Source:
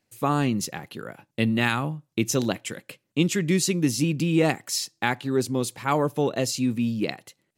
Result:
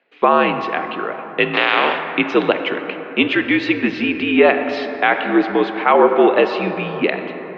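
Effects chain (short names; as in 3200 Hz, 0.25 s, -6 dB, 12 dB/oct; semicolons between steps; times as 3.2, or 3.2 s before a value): 1.53–2.07 spectral contrast lowered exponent 0.34; mistuned SSB -64 Hz 410–3200 Hz; on a send at -8 dB: reverb RT60 4.2 s, pre-delay 18 ms; on the sum: maximiser +15 dB; gain -1 dB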